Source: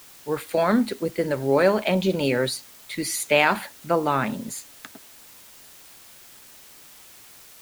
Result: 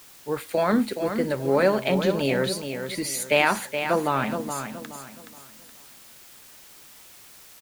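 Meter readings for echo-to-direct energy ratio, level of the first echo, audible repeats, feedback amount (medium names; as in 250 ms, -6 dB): -7.5 dB, -8.0 dB, 3, 32%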